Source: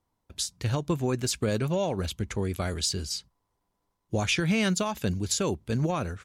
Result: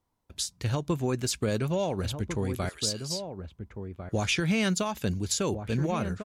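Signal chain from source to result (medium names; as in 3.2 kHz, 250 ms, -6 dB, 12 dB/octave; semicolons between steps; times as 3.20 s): 2.69–3.10 s: Bessel high-pass 1.5 kHz, order 2; echo from a far wall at 240 m, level -8 dB; trim -1 dB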